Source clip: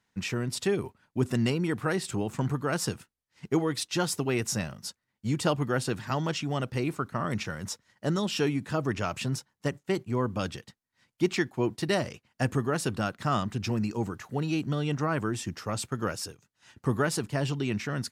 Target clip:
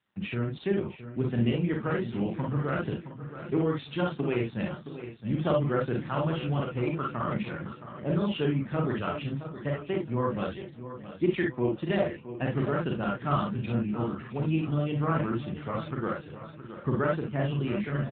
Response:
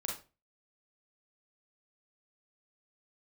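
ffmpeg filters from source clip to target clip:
-filter_complex "[0:a]asettb=1/sr,asplit=3[link_01][link_02][link_03];[link_01]atrim=end=5.874[link_04];[link_02]atrim=start=5.87:end=6.42,asetpts=PTS-STARTPTS,afade=type=in:duration=0.004:curve=qsin,afade=type=out:start_time=0.546:duration=0.004:curve=qsin,aeval=exprs='val(0)+0.00794*(sin(2*PI*60*n/s)+sin(2*PI*2*60*n/s)/2+sin(2*PI*3*60*n/s)/3+sin(2*PI*4*60*n/s)/4+sin(2*PI*5*60*n/s)/5)':channel_layout=same[link_05];[link_03]atrim=start=6.416[link_06];[link_04][link_05]acrossfade=duration=0.004:curve1=hsin:curve2=qsin[link_07];[link_07][link_06]acrossfade=duration=0.004:curve1=qsin:curve2=hsin,asplit=3[link_08][link_09][link_10];[link_08]afade=type=out:start_time=7.52:duration=0.02[link_11];[link_09]lowpass=frequency=2000:poles=1,afade=type=in:start_time=7.52:duration=0.02,afade=type=out:start_time=8.2:duration=0.02[link_12];[link_10]afade=type=in:start_time=8.2:duration=0.02[link_13];[link_11][link_12][link_13]amix=inputs=3:normalize=0,asettb=1/sr,asplit=3[link_14][link_15][link_16];[link_14]atrim=end=9.304[link_17];[link_15]atrim=start=9.3:end=9.93,asetpts=PTS-STARTPTS,afade=type=in:duration=0.004:curve=qsin,afade=type=out:start_time=0.626:duration=0.004:curve=qsin,bandreject=frequency=60:width_type=h:width=6,bandreject=frequency=120:width_type=h:width=6,bandreject=frequency=180:width_type=h:width=6,bandreject=frequency=240:width_type=h:width=6,bandreject=frequency=300:width_type=h:width=6,bandreject=frequency=360:width_type=h:width=6,bandreject=frequency=420:width_type=h:width=6[link_18];[link_16]atrim=start=9.926[link_19];[link_17][link_18]acrossfade=duration=0.004:curve1=hsin:curve2=qsin[link_20];[link_20][link_19]acrossfade=duration=0.004:curve1=qsin:curve2=hsin,aecho=1:1:668|1336|2004|2672:0.251|0.105|0.0443|0.0186[link_21];[1:a]atrim=start_sample=2205,atrim=end_sample=3528[link_22];[link_21][link_22]afir=irnorm=-1:irlink=0" -ar 8000 -c:a libopencore_amrnb -b:a 7400

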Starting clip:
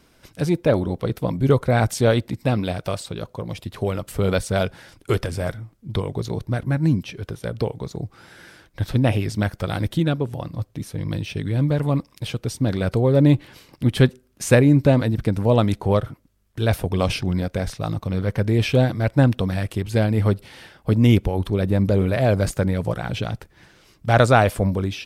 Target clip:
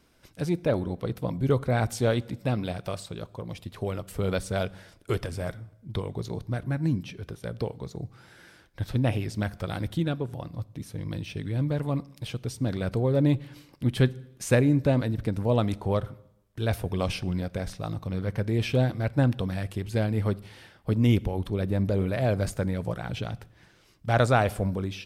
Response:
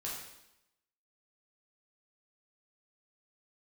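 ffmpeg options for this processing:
-filter_complex "[0:a]asplit=2[link_01][link_02];[1:a]atrim=start_sample=2205,lowshelf=frequency=230:gain=8[link_03];[link_02][link_03]afir=irnorm=-1:irlink=0,volume=-20dB[link_04];[link_01][link_04]amix=inputs=2:normalize=0,volume=-7.5dB"

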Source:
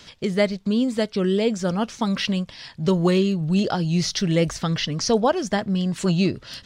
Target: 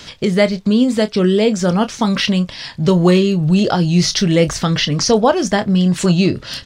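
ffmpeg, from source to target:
ffmpeg -i in.wav -filter_complex "[0:a]asplit=2[link_01][link_02];[link_02]alimiter=limit=-19.5dB:level=0:latency=1:release=163,volume=-0.5dB[link_03];[link_01][link_03]amix=inputs=2:normalize=0,asplit=2[link_04][link_05];[link_05]adelay=28,volume=-12dB[link_06];[link_04][link_06]amix=inputs=2:normalize=0,volume=4dB" out.wav

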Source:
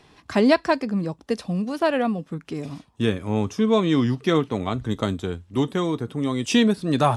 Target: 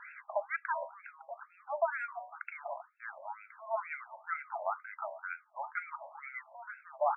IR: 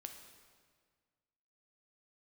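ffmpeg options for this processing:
-af "bandreject=frequency=760:width=12,aecho=1:1:1.4:0.52,bandreject=frequency=73.32:width_type=h:width=4,bandreject=frequency=146.64:width_type=h:width=4,bandreject=frequency=219.96:width_type=h:width=4,bandreject=frequency=293.28:width_type=h:width=4,bandreject=frequency=366.6:width_type=h:width=4,bandreject=frequency=439.92:width_type=h:width=4,bandreject=frequency=513.24:width_type=h:width=4,bandreject=frequency=586.56:width_type=h:width=4,bandreject=frequency=659.88:width_type=h:width=4,bandreject=frequency=733.2:width_type=h:width=4,bandreject=frequency=806.52:width_type=h:width=4,bandreject=frequency=879.84:width_type=h:width=4,bandreject=frequency=953.16:width_type=h:width=4,bandreject=frequency=1026.48:width_type=h:width=4,bandreject=frequency=1099.8:width_type=h:width=4,bandreject=frequency=1173.12:width_type=h:width=4,bandreject=frequency=1246.44:width_type=h:width=4,alimiter=limit=-17dB:level=0:latency=1:release=291,areverse,acompressor=threshold=-38dB:ratio=6,areverse,afftfilt=real='re*between(b*sr/1024,770*pow(1900/770,0.5+0.5*sin(2*PI*2.1*pts/sr))/1.41,770*pow(1900/770,0.5+0.5*sin(2*PI*2.1*pts/sr))*1.41)':imag='im*between(b*sr/1024,770*pow(1900/770,0.5+0.5*sin(2*PI*2.1*pts/sr))/1.41,770*pow(1900/770,0.5+0.5*sin(2*PI*2.1*pts/sr))*1.41)':win_size=1024:overlap=0.75,volume=14dB"

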